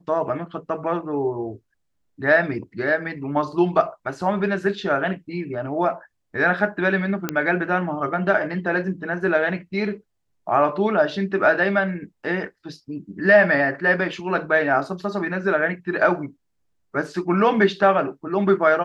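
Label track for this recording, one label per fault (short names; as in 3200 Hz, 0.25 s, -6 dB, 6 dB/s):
7.290000	7.290000	pop -8 dBFS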